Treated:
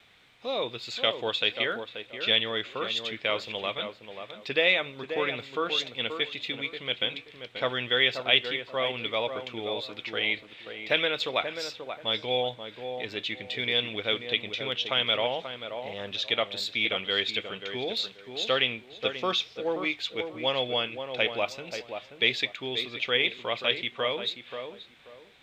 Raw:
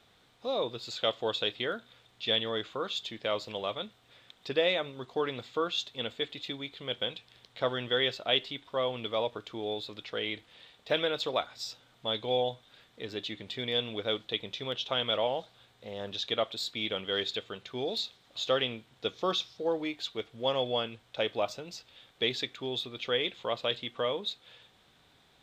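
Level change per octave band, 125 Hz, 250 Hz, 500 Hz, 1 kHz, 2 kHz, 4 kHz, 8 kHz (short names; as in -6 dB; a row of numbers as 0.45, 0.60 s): +0.5, +1.0, +1.0, +2.5, +9.5, +5.0, +1.0 dB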